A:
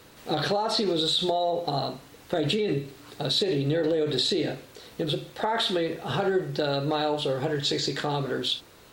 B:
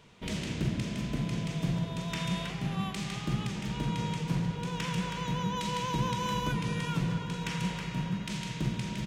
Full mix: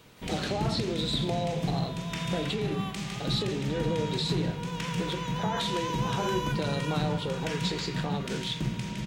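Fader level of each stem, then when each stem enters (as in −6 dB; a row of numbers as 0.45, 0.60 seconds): −7.0, +0.5 decibels; 0.00, 0.00 seconds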